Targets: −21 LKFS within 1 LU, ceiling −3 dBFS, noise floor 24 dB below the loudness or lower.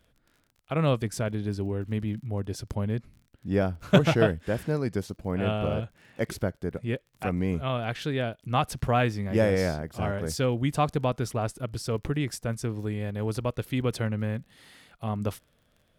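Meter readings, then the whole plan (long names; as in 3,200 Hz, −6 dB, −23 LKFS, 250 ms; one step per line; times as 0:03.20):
crackle rate 35 per second; integrated loudness −29.0 LKFS; sample peak −6.0 dBFS; target loudness −21.0 LKFS
→ click removal
level +8 dB
brickwall limiter −3 dBFS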